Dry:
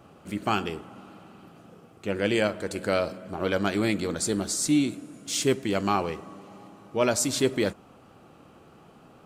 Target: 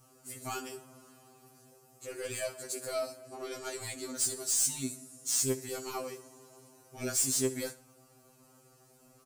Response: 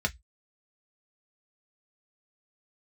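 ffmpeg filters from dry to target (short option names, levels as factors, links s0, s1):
-filter_complex "[0:a]asettb=1/sr,asplit=3[s0][s1][s2];[s0]atrim=end=3.284[s3];[s1]atrim=start=3.28:end=4.17,asetpts=PTS-STARTPTS,afade=t=in:d=0.004:c=qsin,afade=t=out:st=0.886:d=0.004:c=qsin,lowpass=10000[s4];[s2]atrim=start=4.166[s5];[s3][s4]acrossfade=d=0.004:c1=hsin:c2=qsin[s6];[s6][s5]acrossfade=d=0.004:c1=qsin:c2=hsin,aexciter=amount=4.4:drive=9.1:freq=4800,asplit=2[s7][s8];[s8]aecho=0:1:72|144|216:0.1|0.035|0.0123[s9];[s7][s9]amix=inputs=2:normalize=0,asoftclip=type=tanh:threshold=0.188,afftfilt=real='re*2.45*eq(mod(b,6),0)':imag='im*2.45*eq(mod(b,6),0)':win_size=2048:overlap=0.75,volume=0.376"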